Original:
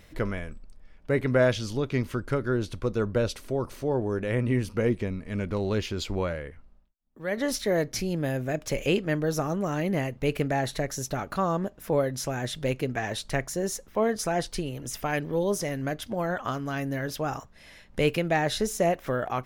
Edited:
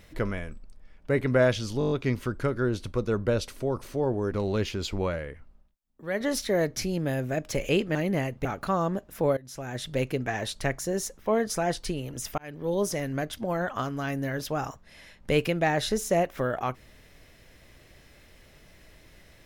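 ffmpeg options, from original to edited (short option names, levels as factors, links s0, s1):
-filter_complex "[0:a]asplit=12[s0][s1][s2][s3][s4][s5][s6][s7][s8][s9][s10][s11];[s0]atrim=end=1.812[s12];[s1]atrim=start=1.788:end=1.812[s13];[s2]atrim=start=1.788:end=1.812[s14];[s3]atrim=start=1.788:end=1.812[s15];[s4]atrim=start=1.788:end=1.812[s16];[s5]atrim=start=1.788:end=1.812[s17];[s6]atrim=start=1.788:end=4.202[s18];[s7]atrim=start=5.488:end=9.122[s19];[s8]atrim=start=9.748:end=10.252[s20];[s9]atrim=start=11.138:end=12.06,asetpts=PTS-STARTPTS,afade=t=out:st=0.918:d=0.004:c=hsin:silence=0.0944061[s21];[s10]atrim=start=12.06:end=15.07,asetpts=PTS-STARTPTS,afade=t=in:d=0.58:silence=0.0944061,afade=t=out:st=3.006:d=0.004:c=hsin[s22];[s11]atrim=start=15.07,asetpts=PTS-STARTPTS,afade=t=in:d=0.4[s23];[s12][s13]acrossfade=d=0.004:c1=hsin:c2=hsin[s24];[s24][s14]acrossfade=d=0.004:c1=hsin:c2=hsin[s25];[s25][s15]acrossfade=d=0.004:c1=hsin:c2=hsin[s26];[s26][s16]acrossfade=d=0.004:c1=hsin:c2=hsin[s27];[s27][s17]acrossfade=d=0.004:c1=hsin:c2=hsin[s28];[s28][s18]acrossfade=d=0.004:c1=hsin:c2=hsin[s29];[s29][s19]acrossfade=d=0.004:c1=hsin:c2=hsin[s30];[s30][s20]acrossfade=d=0.004:c1=hsin:c2=hsin[s31];[s21][s22][s23]concat=n=3:v=0:a=1[s32];[s31][s32]acrossfade=d=0.004:c1=hsin:c2=hsin"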